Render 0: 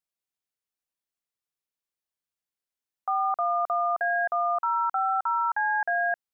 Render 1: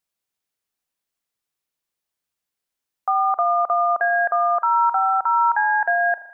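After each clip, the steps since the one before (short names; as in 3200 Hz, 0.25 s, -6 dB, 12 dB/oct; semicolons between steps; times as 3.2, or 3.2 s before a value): spring tank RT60 1.2 s, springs 38 ms, chirp 80 ms, DRR 13 dB; gain +7 dB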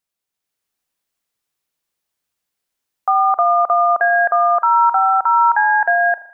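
AGC gain up to 5 dB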